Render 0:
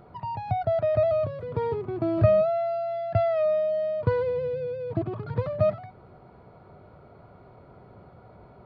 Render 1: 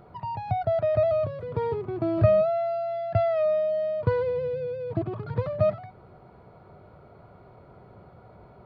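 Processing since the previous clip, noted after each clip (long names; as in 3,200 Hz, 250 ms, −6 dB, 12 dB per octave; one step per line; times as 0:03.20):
parametric band 260 Hz −3 dB 0.25 octaves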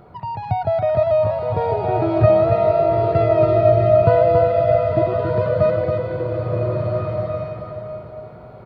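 single-tap delay 278 ms −5.5 dB
slow-attack reverb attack 1,570 ms, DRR 0 dB
level +5 dB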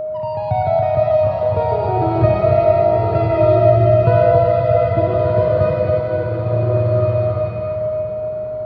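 parametric band 86 Hz +2.5 dB 1.5 octaves
four-comb reverb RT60 1.9 s, combs from 31 ms, DRR 0.5 dB
steady tone 620 Hz −20 dBFS
level −1 dB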